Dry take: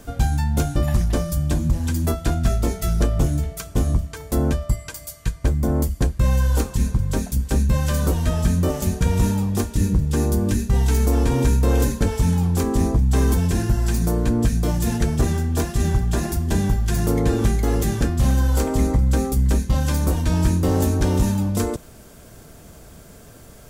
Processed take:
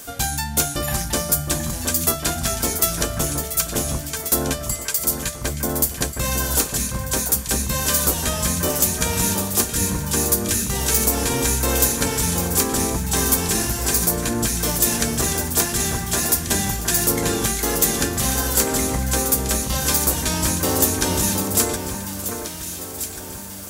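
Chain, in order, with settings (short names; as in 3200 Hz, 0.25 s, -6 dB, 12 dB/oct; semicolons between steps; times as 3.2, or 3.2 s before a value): tilt +3.5 dB/oct; echo with dull and thin repeats by turns 0.718 s, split 2000 Hz, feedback 64%, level -6 dB; gain +3 dB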